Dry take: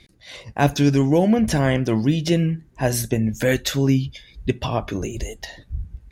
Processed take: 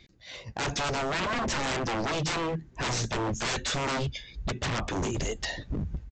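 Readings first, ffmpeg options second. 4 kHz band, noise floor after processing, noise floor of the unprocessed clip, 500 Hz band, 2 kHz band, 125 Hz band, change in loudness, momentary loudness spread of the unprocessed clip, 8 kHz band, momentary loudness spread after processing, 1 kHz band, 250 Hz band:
−1.5 dB, −55 dBFS, −53 dBFS, −10.0 dB, −2.5 dB, −12.0 dB, −9.5 dB, 16 LU, −3.5 dB, 6 LU, −3.0 dB, −14.5 dB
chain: -af "dynaudnorm=framelen=400:gausssize=3:maxgain=11dB,aresample=16000,aeval=exprs='0.1*(abs(mod(val(0)/0.1+3,4)-2)-1)':channel_layout=same,aresample=44100,volume=-4.5dB"

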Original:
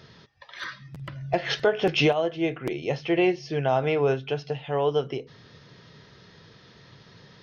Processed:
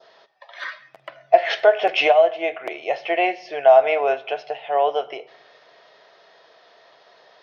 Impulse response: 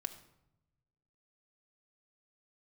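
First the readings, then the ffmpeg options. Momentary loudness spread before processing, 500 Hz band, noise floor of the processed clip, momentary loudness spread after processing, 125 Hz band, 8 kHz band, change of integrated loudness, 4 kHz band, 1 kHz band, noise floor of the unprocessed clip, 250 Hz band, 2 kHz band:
15 LU, +7.0 dB, −55 dBFS, 19 LU, below −25 dB, can't be measured, +6.5 dB, +2.5 dB, +10.5 dB, −53 dBFS, −9.0 dB, +5.5 dB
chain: -filter_complex "[0:a]adynamicequalizer=threshold=0.00562:dfrequency=2200:dqfactor=1.6:tfrequency=2200:tqfactor=1.6:attack=5:release=100:ratio=0.375:range=4:mode=boostabove:tftype=bell,highpass=frequency=650:width_type=q:width=4.9,asplit=2[link_01][link_02];[1:a]atrim=start_sample=2205,lowpass=5600[link_03];[link_02][link_03]afir=irnorm=-1:irlink=0,volume=-1.5dB[link_04];[link_01][link_04]amix=inputs=2:normalize=0,volume=-5dB"

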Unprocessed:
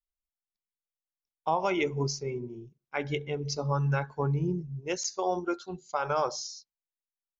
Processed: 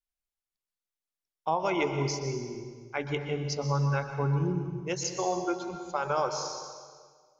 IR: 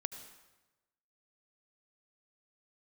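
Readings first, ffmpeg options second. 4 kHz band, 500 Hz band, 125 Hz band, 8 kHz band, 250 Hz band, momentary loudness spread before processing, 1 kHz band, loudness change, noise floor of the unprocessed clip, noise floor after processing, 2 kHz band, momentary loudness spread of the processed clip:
+0.5 dB, +0.5 dB, +1.0 dB, can't be measured, +0.5 dB, 9 LU, 0.0 dB, +0.5 dB, below −85 dBFS, below −85 dBFS, 0.0 dB, 10 LU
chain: -filter_complex "[1:a]atrim=start_sample=2205,asetrate=27342,aresample=44100[link_01];[0:a][link_01]afir=irnorm=-1:irlink=0,volume=-1.5dB"

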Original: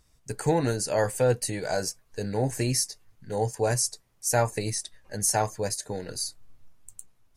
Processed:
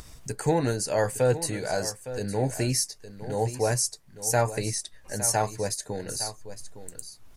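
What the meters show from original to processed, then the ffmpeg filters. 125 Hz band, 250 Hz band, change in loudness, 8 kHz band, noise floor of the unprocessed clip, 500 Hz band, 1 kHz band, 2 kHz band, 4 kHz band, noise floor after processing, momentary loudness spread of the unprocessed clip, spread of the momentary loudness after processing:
+0.5 dB, 0.0 dB, 0.0 dB, +0.5 dB, −65 dBFS, 0.0 dB, 0.0 dB, +0.5 dB, +0.5 dB, −52 dBFS, 11 LU, 16 LU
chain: -filter_complex "[0:a]acompressor=mode=upward:threshold=-31dB:ratio=2.5,asplit=2[link_01][link_02];[link_02]aecho=0:1:861:0.224[link_03];[link_01][link_03]amix=inputs=2:normalize=0"

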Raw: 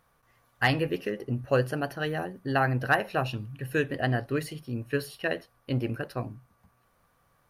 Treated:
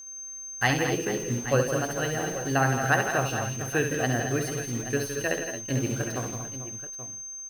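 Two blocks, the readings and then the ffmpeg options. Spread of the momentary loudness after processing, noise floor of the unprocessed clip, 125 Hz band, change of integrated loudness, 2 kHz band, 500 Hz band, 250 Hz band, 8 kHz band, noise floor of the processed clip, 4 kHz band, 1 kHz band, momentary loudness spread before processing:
11 LU, −68 dBFS, +1.5 dB, +2.0 dB, +2.0 dB, +2.0 dB, +2.0 dB, +22.5 dB, −40 dBFS, +2.0 dB, +2.0 dB, 10 LU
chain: -af "acrusher=bits=8:dc=4:mix=0:aa=0.000001,aeval=exprs='val(0)+0.00891*sin(2*PI*6300*n/s)':channel_layout=same,aecho=1:1:67|164|223|232|444|831:0.447|0.355|0.282|0.266|0.224|0.224"

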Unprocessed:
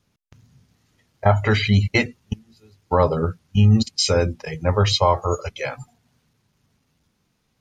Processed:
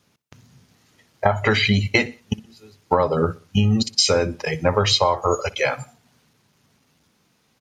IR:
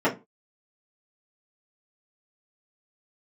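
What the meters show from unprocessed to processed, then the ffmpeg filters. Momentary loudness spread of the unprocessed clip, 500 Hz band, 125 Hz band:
13 LU, +1.0 dB, −4.5 dB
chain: -filter_complex "[0:a]highpass=frequency=210:poles=1,acompressor=threshold=-21dB:ratio=12,asplit=2[link_01][link_02];[link_02]aecho=0:1:61|122|183:0.0891|0.0365|0.015[link_03];[link_01][link_03]amix=inputs=2:normalize=0,volume=7.5dB"

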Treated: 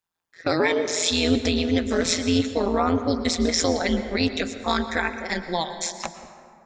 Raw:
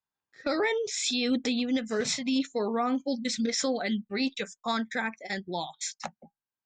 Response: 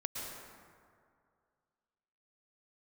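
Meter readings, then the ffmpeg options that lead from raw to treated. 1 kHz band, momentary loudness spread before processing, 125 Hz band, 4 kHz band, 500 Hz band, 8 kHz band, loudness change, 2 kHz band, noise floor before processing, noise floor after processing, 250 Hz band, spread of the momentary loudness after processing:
+6.5 dB, 8 LU, +14.5 dB, +6.5 dB, +7.0 dB, +6.0 dB, +6.0 dB, +6.0 dB, below −85 dBFS, −56 dBFS, +5.5 dB, 7 LU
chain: -filter_complex "[0:a]tremolo=f=170:d=0.889,asplit=2[link_01][link_02];[1:a]atrim=start_sample=2205[link_03];[link_02][link_03]afir=irnorm=-1:irlink=0,volume=-6.5dB[link_04];[link_01][link_04]amix=inputs=2:normalize=0,volume=7dB"

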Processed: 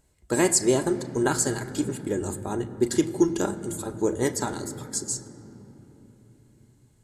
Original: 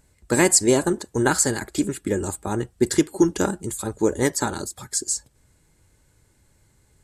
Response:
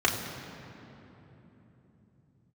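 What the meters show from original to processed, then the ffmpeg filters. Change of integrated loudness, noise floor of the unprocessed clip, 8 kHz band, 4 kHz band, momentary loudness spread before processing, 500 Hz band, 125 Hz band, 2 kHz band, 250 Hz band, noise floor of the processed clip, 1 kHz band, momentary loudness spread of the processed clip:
−4.0 dB, −62 dBFS, −5.0 dB, −5.0 dB, 11 LU, −3.0 dB, −3.5 dB, −6.5 dB, −3.0 dB, −61 dBFS, −4.0 dB, 11 LU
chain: -filter_complex "[0:a]asplit=2[link_01][link_02];[1:a]atrim=start_sample=2205,asetrate=41013,aresample=44100[link_03];[link_02][link_03]afir=irnorm=-1:irlink=0,volume=-20dB[link_04];[link_01][link_04]amix=inputs=2:normalize=0,volume=-6dB"

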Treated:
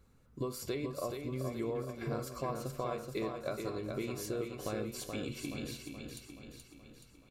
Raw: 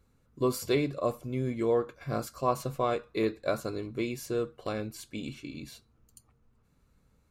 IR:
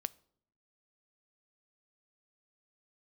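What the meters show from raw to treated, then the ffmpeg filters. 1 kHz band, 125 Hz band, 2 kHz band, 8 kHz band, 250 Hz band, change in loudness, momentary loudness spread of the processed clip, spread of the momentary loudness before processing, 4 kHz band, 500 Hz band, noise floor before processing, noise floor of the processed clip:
−8.0 dB, −4.5 dB, −5.5 dB, −2.0 dB, −6.0 dB, −7.0 dB, 14 LU, 11 LU, −4.0 dB, −7.5 dB, −68 dBFS, −62 dBFS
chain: -filter_complex "[0:a]acompressor=threshold=-37dB:ratio=6,aecho=1:1:426|852|1278|1704|2130|2556|2982:0.531|0.287|0.155|0.0836|0.0451|0.0244|0.0132[link_01];[1:a]atrim=start_sample=2205[link_02];[link_01][link_02]afir=irnorm=-1:irlink=0,volume=3dB"

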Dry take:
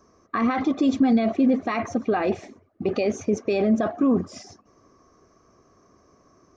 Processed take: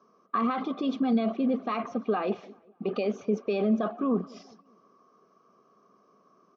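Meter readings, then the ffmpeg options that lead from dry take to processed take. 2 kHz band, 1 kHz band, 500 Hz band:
−8.5 dB, −3.5 dB, −5.0 dB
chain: -filter_complex "[0:a]highpass=frequency=170:width=0.5412,highpass=frequency=170:width=1.3066,equalizer=frequency=200:width_type=q:width=4:gain=5,equalizer=frequency=310:width_type=q:width=4:gain=-6,equalizer=frequency=440:width_type=q:width=4:gain=4,equalizer=frequency=1200:width_type=q:width=4:gain=8,equalizer=frequency=1900:width_type=q:width=4:gain=-8,equalizer=frequency=3100:width_type=q:width=4:gain=6,lowpass=frequency=4800:width=0.5412,lowpass=frequency=4800:width=1.3066,asplit=2[link_01][link_02];[link_02]adelay=196,lowpass=frequency=2400:poles=1,volume=-24dB,asplit=2[link_03][link_04];[link_04]adelay=196,lowpass=frequency=2400:poles=1,volume=0.46,asplit=2[link_05][link_06];[link_06]adelay=196,lowpass=frequency=2400:poles=1,volume=0.46[link_07];[link_01][link_03][link_05][link_07]amix=inputs=4:normalize=0,volume=-6.5dB"

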